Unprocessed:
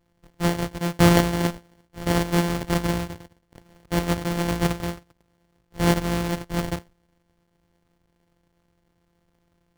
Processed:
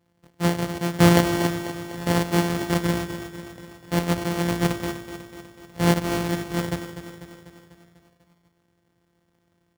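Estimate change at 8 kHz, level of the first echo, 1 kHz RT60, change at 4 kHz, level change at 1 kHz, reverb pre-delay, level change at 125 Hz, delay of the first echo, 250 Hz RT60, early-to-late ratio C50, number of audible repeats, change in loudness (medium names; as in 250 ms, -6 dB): +0.5 dB, -10.5 dB, no reverb, +0.5 dB, +0.5 dB, no reverb, 0.0 dB, 247 ms, no reverb, no reverb, 6, +0.5 dB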